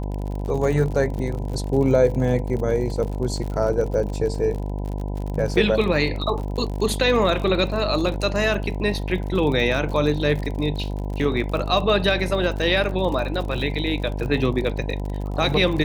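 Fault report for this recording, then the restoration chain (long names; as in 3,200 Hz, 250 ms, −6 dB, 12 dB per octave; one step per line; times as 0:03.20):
mains buzz 50 Hz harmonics 20 −27 dBFS
surface crackle 57 per second −29 dBFS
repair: click removal
hum removal 50 Hz, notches 20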